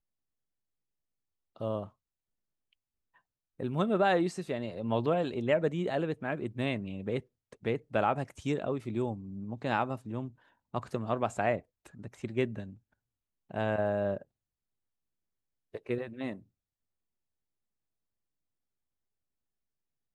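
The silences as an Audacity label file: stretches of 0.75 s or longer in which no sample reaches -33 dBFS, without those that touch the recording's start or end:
1.840000	3.600000	silence
12.630000	13.510000	silence
14.170000	15.750000	silence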